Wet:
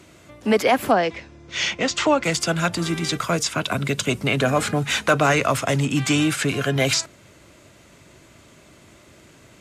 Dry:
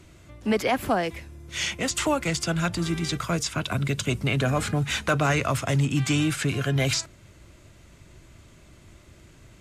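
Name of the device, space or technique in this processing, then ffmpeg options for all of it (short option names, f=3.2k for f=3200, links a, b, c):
filter by subtraction: -filter_complex "[0:a]asettb=1/sr,asplit=3[a][b][c];[a]atrim=end=0.914[d];[b]atrim=start=0.91:end=2.24,asetpts=PTS-STARTPTS,afade=t=in:d=0.004:c=qsin,afade=t=out:st=1.326:d=0.004:c=qsin,lowpass=f=6.2k:w=0.5412,lowpass=f=6.2k:w=1.3066[e];[c]atrim=start=2.236[f];[d][e]acrossfade=d=0.004:c1=hsin:c2=qsin[g];[g][f]acrossfade=d=0.004:c1=qsin:c2=hsin,asplit=2[h][i];[i]lowpass=370,volume=-1[j];[h][j]amix=inputs=2:normalize=0,equalizer=f=350:w=4.9:g=-3.5,volume=5dB"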